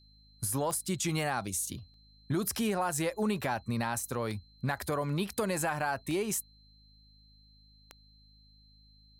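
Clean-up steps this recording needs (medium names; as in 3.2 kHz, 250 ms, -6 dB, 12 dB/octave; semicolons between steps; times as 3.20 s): de-click; de-hum 52.2 Hz, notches 5; band-stop 4.1 kHz, Q 30; interpolate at 1.94/5.30 s, 2 ms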